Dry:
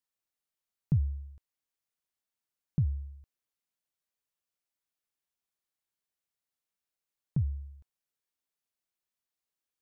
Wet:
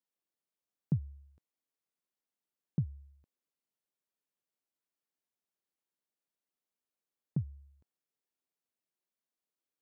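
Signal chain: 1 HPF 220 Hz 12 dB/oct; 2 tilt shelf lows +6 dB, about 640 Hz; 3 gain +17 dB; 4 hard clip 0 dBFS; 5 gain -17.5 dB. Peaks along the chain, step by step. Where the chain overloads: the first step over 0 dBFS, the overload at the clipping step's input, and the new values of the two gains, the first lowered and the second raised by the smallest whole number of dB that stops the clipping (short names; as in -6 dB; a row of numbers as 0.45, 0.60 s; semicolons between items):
-24.5, -19.5, -2.5, -2.5, -20.0 dBFS; no overload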